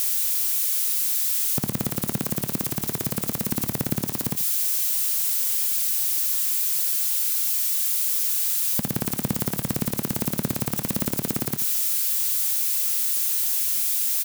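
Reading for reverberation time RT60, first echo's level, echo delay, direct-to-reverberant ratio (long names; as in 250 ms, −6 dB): no reverb audible, −14.5 dB, 83 ms, no reverb audible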